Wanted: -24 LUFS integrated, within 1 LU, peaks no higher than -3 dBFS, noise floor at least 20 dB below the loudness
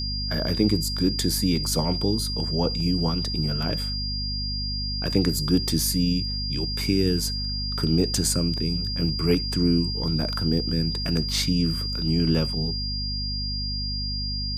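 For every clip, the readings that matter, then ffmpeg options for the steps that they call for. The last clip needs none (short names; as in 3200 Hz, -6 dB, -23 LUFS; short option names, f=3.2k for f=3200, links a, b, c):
hum 50 Hz; harmonics up to 250 Hz; hum level -28 dBFS; steady tone 4800 Hz; tone level -29 dBFS; loudness -24.5 LUFS; peak -8.5 dBFS; loudness target -24.0 LUFS
-> -af "bandreject=f=50:t=h:w=6,bandreject=f=100:t=h:w=6,bandreject=f=150:t=h:w=6,bandreject=f=200:t=h:w=6,bandreject=f=250:t=h:w=6"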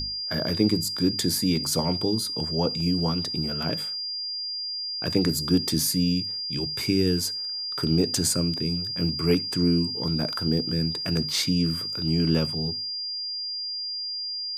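hum none; steady tone 4800 Hz; tone level -29 dBFS
-> -af "bandreject=f=4.8k:w=30"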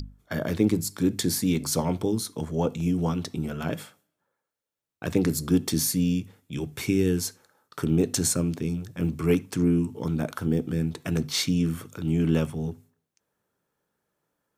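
steady tone none; loudness -26.5 LUFS; peak -9.5 dBFS; loudness target -24.0 LUFS
-> -af "volume=2.5dB"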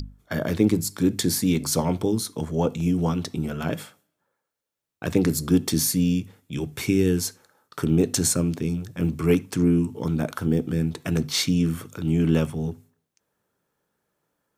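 loudness -24.0 LUFS; peak -7.0 dBFS; noise floor -80 dBFS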